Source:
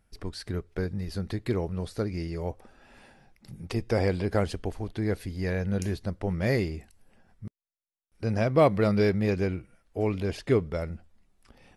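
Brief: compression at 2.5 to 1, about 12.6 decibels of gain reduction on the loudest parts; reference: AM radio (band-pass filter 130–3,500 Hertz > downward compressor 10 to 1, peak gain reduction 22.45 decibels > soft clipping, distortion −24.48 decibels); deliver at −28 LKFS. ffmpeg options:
ffmpeg -i in.wav -af "acompressor=threshold=-35dB:ratio=2.5,highpass=130,lowpass=3500,acompressor=threshold=-50dB:ratio=10,asoftclip=threshold=-38.5dB,volume=28dB" out.wav

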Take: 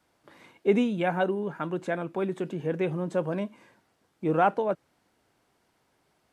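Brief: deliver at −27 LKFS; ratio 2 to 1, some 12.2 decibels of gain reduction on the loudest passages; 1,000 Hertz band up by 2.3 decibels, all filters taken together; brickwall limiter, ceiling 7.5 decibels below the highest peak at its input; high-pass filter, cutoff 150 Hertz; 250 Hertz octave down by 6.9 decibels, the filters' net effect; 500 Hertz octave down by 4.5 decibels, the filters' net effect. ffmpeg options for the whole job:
ffmpeg -i in.wav -af "highpass=150,equalizer=frequency=250:width_type=o:gain=-7.5,equalizer=frequency=500:width_type=o:gain=-5,equalizer=frequency=1000:width_type=o:gain=6.5,acompressor=threshold=-39dB:ratio=2,volume=14.5dB,alimiter=limit=-14dB:level=0:latency=1" out.wav

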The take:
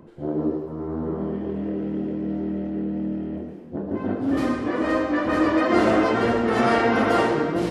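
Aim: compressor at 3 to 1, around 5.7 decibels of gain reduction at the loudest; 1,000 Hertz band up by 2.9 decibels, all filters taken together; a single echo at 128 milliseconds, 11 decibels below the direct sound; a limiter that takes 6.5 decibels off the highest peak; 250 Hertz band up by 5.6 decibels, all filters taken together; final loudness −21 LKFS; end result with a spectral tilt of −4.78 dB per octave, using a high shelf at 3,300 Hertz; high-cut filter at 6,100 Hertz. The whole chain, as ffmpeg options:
ffmpeg -i in.wav -af "lowpass=6100,equalizer=frequency=250:width_type=o:gain=7,equalizer=frequency=1000:width_type=o:gain=4.5,highshelf=frequency=3300:gain=-9,acompressor=threshold=-18dB:ratio=3,alimiter=limit=-14dB:level=0:latency=1,aecho=1:1:128:0.282,volume=2.5dB" out.wav

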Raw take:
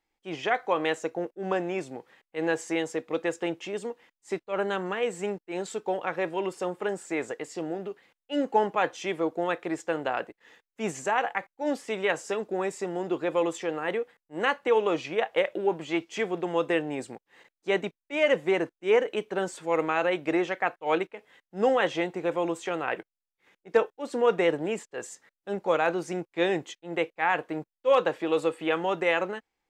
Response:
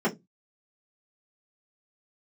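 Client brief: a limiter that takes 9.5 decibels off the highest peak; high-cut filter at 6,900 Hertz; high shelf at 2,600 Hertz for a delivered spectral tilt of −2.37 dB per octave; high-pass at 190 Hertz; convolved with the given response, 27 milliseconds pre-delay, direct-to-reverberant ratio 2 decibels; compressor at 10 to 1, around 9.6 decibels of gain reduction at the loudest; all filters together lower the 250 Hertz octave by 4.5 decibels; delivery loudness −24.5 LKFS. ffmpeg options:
-filter_complex "[0:a]highpass=190,lowpass=6900,equalizer=frequency=250:width_type=o:gain=-6,highshelf=frequency=2600:gain=-8,acompressor=threshold=-28dB:ratio=10,alimiter=level_in=2dB:limit=-24dB:level=0:latency=1,volume=-2dB,asplit=2[link_01][link_02];[1:a]atrim=start_sample=2205,adelay=27[link_03];[link_02][link_03]afir=irnorm=-1:irlink=0,volume=-14.5dB[link_04];[link_01][link_04]amix=inputs=2:normalize=0,volume=8.5dB"

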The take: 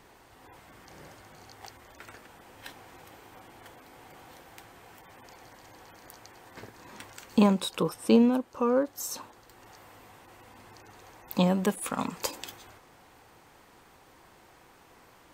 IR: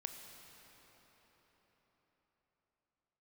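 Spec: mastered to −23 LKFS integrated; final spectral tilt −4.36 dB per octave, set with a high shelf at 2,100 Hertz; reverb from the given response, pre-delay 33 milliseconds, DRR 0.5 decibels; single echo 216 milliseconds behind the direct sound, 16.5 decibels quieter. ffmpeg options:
-filter_complex "[0:a]highshelf=frequency=2100:gain=7.5,aecho=1:1:216:0.15,asplit=2[link_01][link_02];[1:a]atrim=start_sample=2205,adelay=33[link_03];[link_02][link_03]afir=irnorm=-1:irlink=0,volume=2dB[link_04];[link_01][link_04]amix=inputs=2:normalize=0,volume=1dB"

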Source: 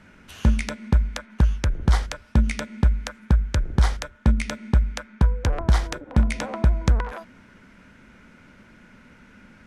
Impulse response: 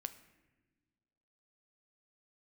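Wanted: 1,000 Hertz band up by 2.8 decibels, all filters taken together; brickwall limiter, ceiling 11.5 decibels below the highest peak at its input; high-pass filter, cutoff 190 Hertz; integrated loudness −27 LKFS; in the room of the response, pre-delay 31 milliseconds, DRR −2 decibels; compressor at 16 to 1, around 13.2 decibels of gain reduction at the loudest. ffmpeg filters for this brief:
-filter_complex "[0:a]highpass=190,equalizer=frequency=1000:width_type=o:gain=3.5,acompressor=threshold=-35dB:ratio=16,alimiter=level_in=6dB:limit=-24dB:level=0:latency=1,volume=-6dB,asplit=2[link_01][link_02];[1:a]atrim=start_sample=2205,adelay=31[link_03];[link_02][link_03]afir=irnorm=-1:irlink=0,volume=5dB[link_04];[link_01][link_04]amix=inputs=2:normalize=0,volume=14.5dB"

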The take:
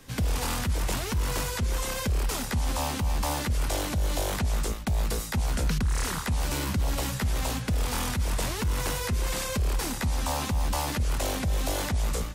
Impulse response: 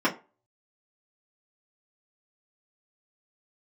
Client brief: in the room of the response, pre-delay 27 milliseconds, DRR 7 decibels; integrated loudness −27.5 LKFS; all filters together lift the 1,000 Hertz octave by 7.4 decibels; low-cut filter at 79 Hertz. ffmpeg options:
-filter_complex "[0:a]highpass=79,equalizer=frequency=1000:width_type=o:gain=9,asplit=2[link_01][link_02];[1:a]atrim=start_sample=2205,adelay=27[link_03];[link_02][link_03]afir=irnorm=-1:irlink=0,volume=-21dB[link_04];[link_01][link_04]amix=inputs=2:normalize=0"

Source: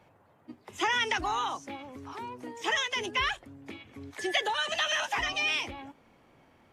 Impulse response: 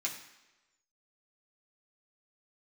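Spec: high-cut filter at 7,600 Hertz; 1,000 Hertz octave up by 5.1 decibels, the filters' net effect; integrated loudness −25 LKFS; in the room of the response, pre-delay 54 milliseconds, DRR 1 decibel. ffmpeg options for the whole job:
-filter_complex "[0:a]lowpass=7600,equalizer=frequency=1000:width_type=o:gain=6,asplit=2[link_01][link_02];[1:a]atrim=start_sample=2205,adelay=54[link_03];[link_02][link_03]afir=irnorm=-1:irlink=0,volume=-3.5dB[link_04];[link_01][link_04]amix=inputs=2:normalize=0,volume=0.5dB"

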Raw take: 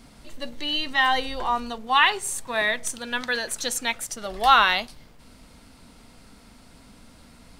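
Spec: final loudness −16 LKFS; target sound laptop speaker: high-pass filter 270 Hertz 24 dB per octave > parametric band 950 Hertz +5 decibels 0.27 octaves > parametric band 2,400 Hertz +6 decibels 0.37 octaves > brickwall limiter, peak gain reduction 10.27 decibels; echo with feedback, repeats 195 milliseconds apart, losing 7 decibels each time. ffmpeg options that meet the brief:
ffmpeg -i in.wav -af "highpass=frequency=270:width=0.5412,highpass=frequency=270:width=1.3066,equalizer=frequency=950:width_type=o:width=0.27:gain=5,equalizer=frequency=2400:width_type=o:width=0.37:gain=6,aecho=1:1:195|390|585|780|975:0.447|0.201|0.0905|0.0407|0.0183,volume=7.5dB,alimiter=limit=-5dB:level=0:latency=1" out.wav

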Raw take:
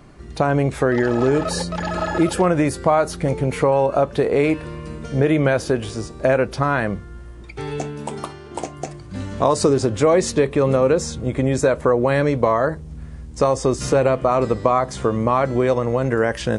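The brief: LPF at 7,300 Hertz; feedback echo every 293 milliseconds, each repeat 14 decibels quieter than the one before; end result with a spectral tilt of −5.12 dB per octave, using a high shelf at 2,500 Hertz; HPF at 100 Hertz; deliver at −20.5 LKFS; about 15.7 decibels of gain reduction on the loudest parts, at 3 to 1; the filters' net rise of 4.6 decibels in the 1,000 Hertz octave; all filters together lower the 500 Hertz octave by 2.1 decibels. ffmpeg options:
ffmpeg -i in.wav -af "highpass=100,lowpass=7300,equalizer=frequency=500:width_type=o:gain=-4.5,equalizer=frequency=1000:width_type=o:gain=6.5,highshelf=frequency=2500:gain=3.5,acompressor=threshold=-32dB:ratio=3,aecho=1:1:293|586:0.2|0.0399,volume=12dB" out.wav

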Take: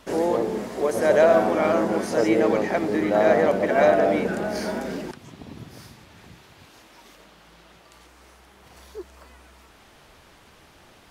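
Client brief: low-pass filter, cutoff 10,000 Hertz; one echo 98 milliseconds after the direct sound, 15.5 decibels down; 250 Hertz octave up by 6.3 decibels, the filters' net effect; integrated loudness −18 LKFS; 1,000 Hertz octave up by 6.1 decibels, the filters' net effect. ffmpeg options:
ffmpeg -i in.wav -af "lowpass=10000,equalizer=frequency=250:width_type=o:gain=8,equalizer=frequency=1000:width_type=o:gain=8.5,aecho=1:1:98:0.168,volume=-1.5dB" out.wav

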